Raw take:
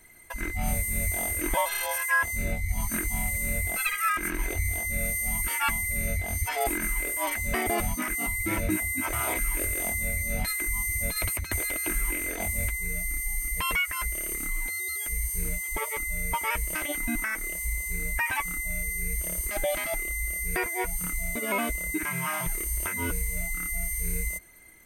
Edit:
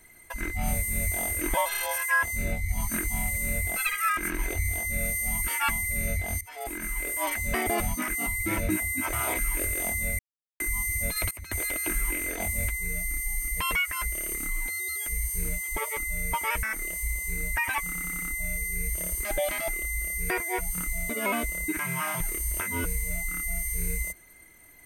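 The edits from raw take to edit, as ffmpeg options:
ffmpeg -i in.wav -filter_complex "[0:a]asplit=10[link_01][link_02][link_03][link_04][link_05][link_06][link_07][link_08][link_09][link_10];[link_01]atrim=end=6.41,asetpts=PTS-STARTPTS,afade=type=out:start_time=6.406:duration=0.004:curve=hsin:silence=0.0944061[link_11];[link_02]atrim=start=6.41:end=10.19,asetpts=PTS-STARTPTS,afade=type=in:duration=0.78:silence=0.0944061,afade=type=out:start_time=3.776:duration=0.004:curve=hsin[link_12];[link_03]atrim=start=10.19:end=10.6,asetpts=PTS-STARTPTS,volume=0[link_13];[link_04]atrim=start=10.6:end=11.31,asetpts=PTS-STARTPTS,afade=type=in:duration=0.004:curve=hsin,afade=type=out:start_time=0.706:duration=0.004:curve=hsin:silence=0.11885[link_14];[link_05]atrim=start=11.31:end=16.632,asetpts=PTS-STARTPTS,afade=type=in:duration=0.32:silence=0.11885[link_15];[link_06]atrim=start=17.248:end=18.562[link_16];[link_07]atrim=start=18.468:end=18.562[link_17];[link_08]atrim=start=18.468:end=18.562[link_18];[link_09]atrim=start=18.468:end=18.562[link_19];[link_10]atrim=start=18.468[link_20];[link_11][link_12][link_13][link_14][link_15]concat=n=5:v=0:a=1[link_21];[link_21][link_16]acrossfade=duration=0.004:curve1=hsin:curve2=hsin[link_22];[link_22][link_17]acrossfade=duration=0.004:curve1=hsin:curve2=hsin[link_23];[link_23][link_18]acrossfade=duration=0.004:curve1=hsin:curve2=hsin[link_24];[link_24][link_19]acrossfade=duration=0.004:curve1=hsin:curve2=hsin[link_25];[link_25][link_20]acrossfade=duration=0.004:curve1=hsin:curve2=hsin" out.wav

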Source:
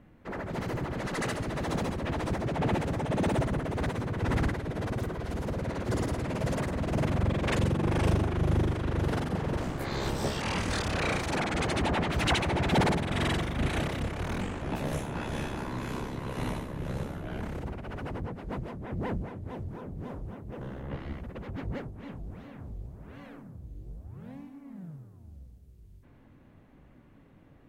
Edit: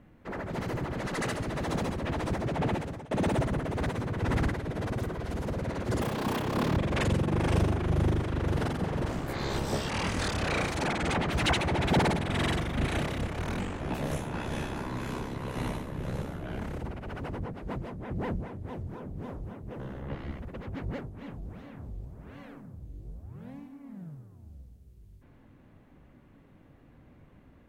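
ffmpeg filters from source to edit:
ffmpeg -i in.wav -filter_complex "[0:a]asplit=5[link_01][link_02][link_03][link_04][link_05];[link_01]atrim=end=3.11,asetpts=PTS-STARTPTS,afade=type=out:start_time=2.61:duration=0.5:silence=0.105925[link_06];[link_02]atrim=start=3.11:end=6.014,asetpts=PTS-STARTPTS,afade=type=in:duration=0.004:curve=hsin:silence=0.105925[link_07];[link_03]atrim=start=6.01:end=7.28,asetpts=PTS-STARTPTS,asetrate=74088,aresample=44100[link_08];[link_04]atrim=start=7.276:end=11.662[link_09];[link_05]atrim=start=11.958[link_10];[link_06][link_07]concat=n=2:v=0:a=1[link_11];[link_11][link_08]acrossfade=duration=0.004:curve1=hsin:curve2=hsin[link_12];[link_12][link_09]acrossfade=duration=0.004:curve1=hsin:curve2=hsin[link_13];[link_13][link_10]acrossfade=duration=0.004:curve1=hsin:curve2=hsin" out.wav

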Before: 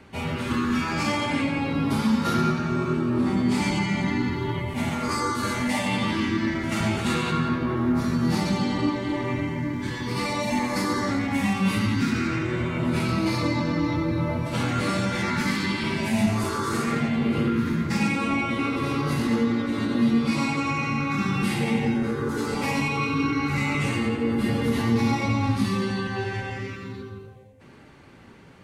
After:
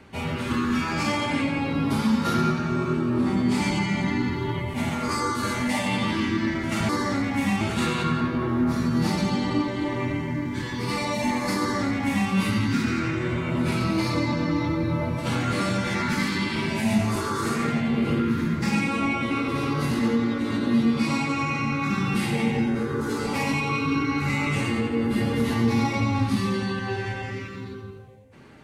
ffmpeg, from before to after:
ffmpeg -i in.wav -filter_complex "[0:a]asplit=3[link_01][link_02][link_03];[link_01]atrim=end=6.892[link_04];[link_02]atrim=start=10.858:end=11.582[link_05];[link_03]atrim=start=6.888[link_06];[link_04][link_05]acrossfade=duration=0.004:curve1=hsin:curve2=hsin[link_07];[link_07][link_06]acrossfade=duration=0.004:curve1=hsin:curve2=hsin" out.wav

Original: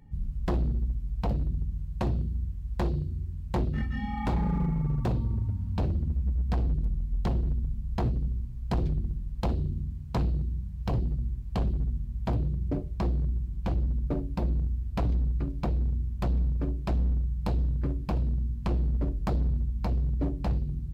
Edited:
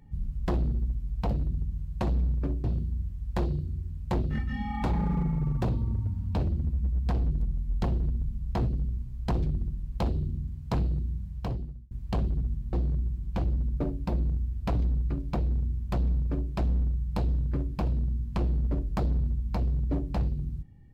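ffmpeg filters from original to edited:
ffmpeg -i in.wav -filter_complex "[0:a]asplit=5[link_01][link_02][link_03][link_04][link_05];[link_01]atrim=end=2.072[link_06];[link_02]atrim=start=16.248:end=16.822[link_07];[link_03]atrim=start=2.068:end=11.34,asetpts=PTS-STARTPTS,afade=type=out:start_time=8.632:duration=0.64[link_08];[link_04]atrim=start=11.34:end=12.162,asetpts=PTS-STARTPTS,afade=type=in:duration=0.004:curve=hsin[link_09];[link_05]atrim=start=13.028[link_10];[link_06][link_07]acrossfade=duration=0.004:curve1=hsin:curve2=hsin[link_11];[link_08][link_09]concat=n=2:v=0:a=1[link_12];[link_11][link_12]acrossfade=duration=0.004:curve1=hsin:curve2=hsin[link_13];[link_13][link_10]acrossfade=duration=0.004:curve1=hsin:curve2=hsin" out.wav

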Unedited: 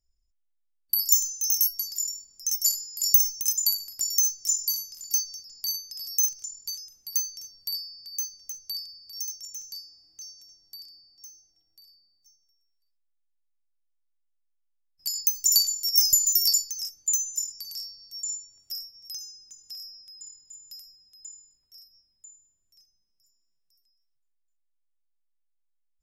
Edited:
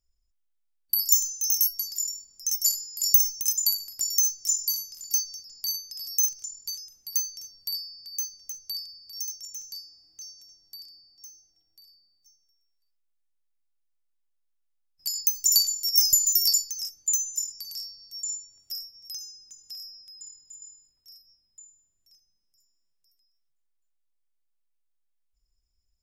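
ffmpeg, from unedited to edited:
ffmpeg -i in.wav -filter_complex "[0:a]asplit=2[link_01][link_02];[link_01]atrim=end=20.622[link_03];[link_02]atrim=start=21.278[link_04];[link_03][link_04]acrossfade=duration=0.004:curve1=hsin:curve2=hsin" out.wav

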